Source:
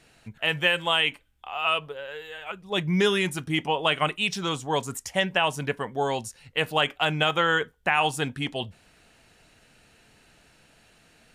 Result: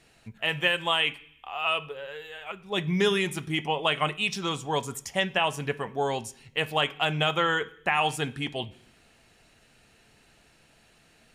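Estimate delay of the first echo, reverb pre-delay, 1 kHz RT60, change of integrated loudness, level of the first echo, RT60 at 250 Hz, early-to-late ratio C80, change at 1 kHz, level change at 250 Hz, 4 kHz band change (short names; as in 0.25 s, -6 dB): none, 3 ms, 0.65 s, -2.0 dB, none, 0.85 s, 22.5 dB, -1.5 dB, -2.0 dB, -2.0 dB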